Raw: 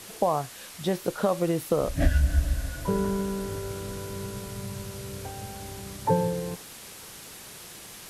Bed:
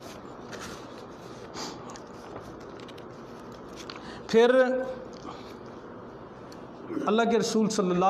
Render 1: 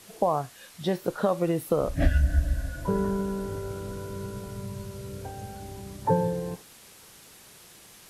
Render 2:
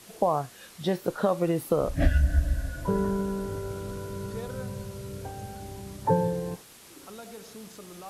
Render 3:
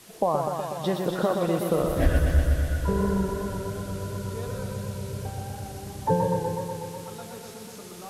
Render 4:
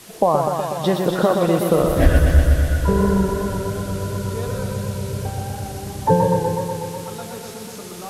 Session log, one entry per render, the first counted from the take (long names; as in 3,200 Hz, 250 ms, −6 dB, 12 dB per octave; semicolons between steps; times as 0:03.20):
noise reduction from a noise print 7 dB
mix in bed −20.5 dB
delay with a high-pass on its return 283 ms, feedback 61%, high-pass 3,000 Hz, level −5 dB; feedback echo with a swinging delay time 123 ms, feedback 77%, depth 73 cents, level −5 dB
level +7.5 dB